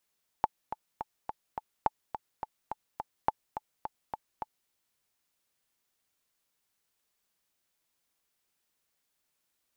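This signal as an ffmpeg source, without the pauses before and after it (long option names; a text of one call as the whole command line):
ffmpeg -f lavfi -i "aevalsrc='pow(10,(-11-10.5*gte(mod(t,5*60/211),60/211))/20)*sin(2*PI*866*mod(t,60/211))*exp(-6.91*mod(t,60/211)/0.03)':duration=4.26:sample_rate=44100" out.wav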